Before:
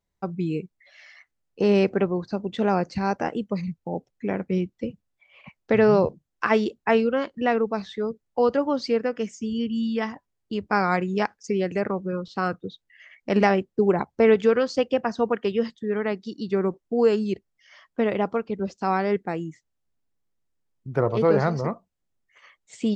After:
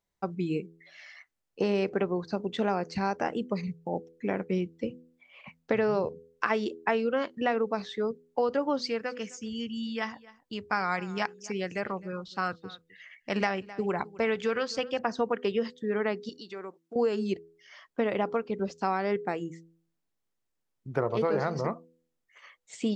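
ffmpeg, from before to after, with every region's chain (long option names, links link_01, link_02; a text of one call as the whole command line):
ffmpeg -i in.wav -filter_complex "[0:a]asettb=1/sr,asplit=3[link_01][link_02][link_03];[link_01]atrim=end=8.824[link_04];[link_02]atrim=start=8.82:end=14.99,asetpts=PTS-STARTPTS,afade=type=in:duration=0.004:curve=qsin,afade=type=out:start_time=6.166:duration=0.004:curve=qsin,equalizer=frequency=370:width_type=o:width=2.2:gain=-8,aecho=1:1:260:0.0891,atrim=end_sample=272097[link_05];[link_03]atrim=start=14.986[link_06];[link_04][link_05]acrossfade=duration=0.004:curve1=hsin:curve2=qsin[link_07];[link_07][link_06]acrossfade=duration=0.004:curve1=qsin:curve2=hsin,asettb=1/sr,asplit=3[link_08][link_09][link_10];[link_08]atrim=end=16.294[link_11];[link_09]atrim=start=16.29:end=16.96,asetpts=PTS-STARTPTS,afade=type=in:duration=0.004:curve=qsin,afade=type=out:start_time=0.666:duration=0.004:curve=qsin,highpass=frequency=920:poles=1,acompressor=threshold=-39dB:ratio=2:attack=3.2:release=140:knee=1:detection=peak[link_12];[link_10]atrim=start=16.956[link_13];[link_11][link_12]acrossfade=duration=0.004:curve1=hsin:curve2=qsin[link_14];[link_14][link_13]acrossfade=duration=0.004:curve1=qsin:curve2=hsin,lowshelf=frequency=200:gain=-7.5,bandreject=frequency=82.72:width_type=h:width=4,bandreject=frequency=165.44:width_type=h:width=4,bandreject=frequency=248.16:width_type=h:width=4,bandreject=frequency=330.88:width_type=h:width=4,bandreject=frequency=413.6:width_type=h:width=4,bandreject=frequency=496.32:width_type=h:width=4,acompressor=threshold=-23dB:ratio=6" out.wav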